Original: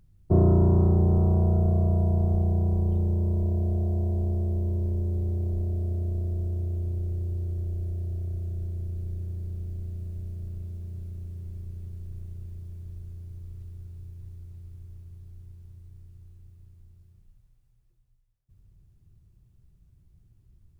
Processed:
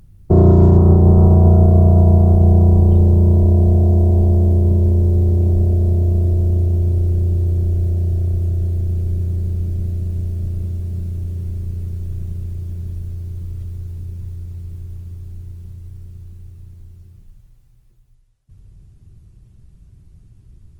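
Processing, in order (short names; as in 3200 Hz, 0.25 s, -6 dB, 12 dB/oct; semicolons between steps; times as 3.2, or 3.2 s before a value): maximiser +15 dB; gain -1.5 dB; Opus 24 kbps 48000 Hz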